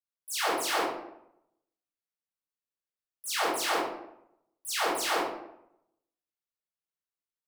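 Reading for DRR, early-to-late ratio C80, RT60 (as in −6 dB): −10.0 dB, 4.5 dB, 0.80 s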